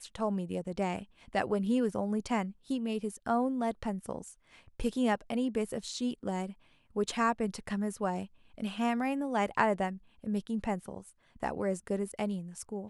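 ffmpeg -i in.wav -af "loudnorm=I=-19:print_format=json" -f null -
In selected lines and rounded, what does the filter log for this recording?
"input_i" : "-33.9",
"input_tp" : "-10.8",
"input_lra" : "3.9",
"input_thresh" : "-44.2",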